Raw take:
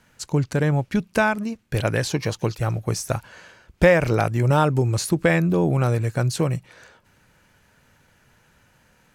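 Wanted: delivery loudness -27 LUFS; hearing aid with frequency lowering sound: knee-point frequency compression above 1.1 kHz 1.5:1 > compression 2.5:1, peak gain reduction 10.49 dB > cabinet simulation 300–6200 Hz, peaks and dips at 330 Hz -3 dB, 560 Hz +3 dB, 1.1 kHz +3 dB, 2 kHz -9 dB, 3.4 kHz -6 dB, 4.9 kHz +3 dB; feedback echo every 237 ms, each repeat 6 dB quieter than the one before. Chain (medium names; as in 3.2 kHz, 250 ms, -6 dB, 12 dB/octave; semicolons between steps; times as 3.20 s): feedback delay 237 ms, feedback 50%, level -6 dB; knee-point frequency compression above 1.1 kHz 1.5:1; compression 2.5:1, threshold -26 dBFS; cabinet simulation 300–6200 Hz, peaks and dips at 330 Hz -3 dB, 560 Hz +3 dB, 1.1 kHz +3 dB, 2 kHz -9 dB, 3.4 kHz -6 dB, 4.9 kHz +3 dB; trim +4 dB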